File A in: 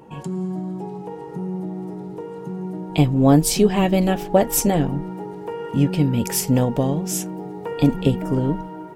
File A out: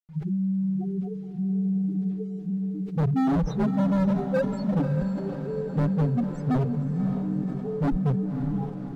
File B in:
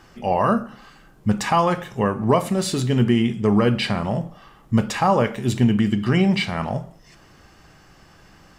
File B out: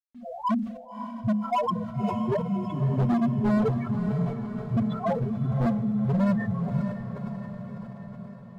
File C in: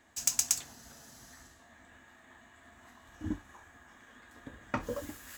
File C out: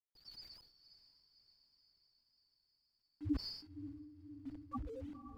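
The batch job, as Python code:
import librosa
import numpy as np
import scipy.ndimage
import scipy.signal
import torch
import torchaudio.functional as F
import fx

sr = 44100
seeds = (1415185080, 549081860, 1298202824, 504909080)

y = fx.partial_stretch(x, sr, pct=89)
y = fx.dynamic_eq(y, sr, hz=1100.0, q=2.7, threshold_db=-44.0, ratio=4.0, max_db=7)
y = fx.leveller(y, sr, passes=1)
y = fx.level_steps(y, sr, step_db=15)
y = fx.spec_topn(y, sr, count=2)
y = fx.quant_dither(y, sr, seeds[0], bits=10, dither='none')
y = fx.riaa(y, sr, side='playback')
y = np.clip(y, -10.0 ** (-19.0 / 20.0), 10.0 ** (-19.0 / 20.0))
y = fx.echo_diffused(y, sr, ms=563, feedback_pct=63, wet_db=-9.0)
y = fx.sustainer(y, sr, db_per_s=78.0)
y = y * librosa.db_to_amplitude(-2.0)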